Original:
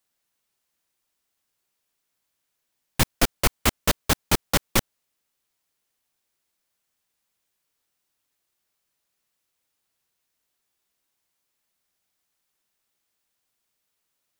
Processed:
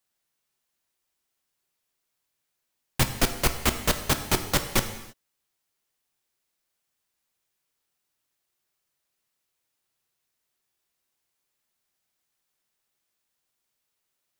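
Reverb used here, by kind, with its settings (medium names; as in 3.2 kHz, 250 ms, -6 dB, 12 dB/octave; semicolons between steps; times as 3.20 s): gated-style reverb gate 350 ms falling, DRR 7 dB; trim -2.5 dB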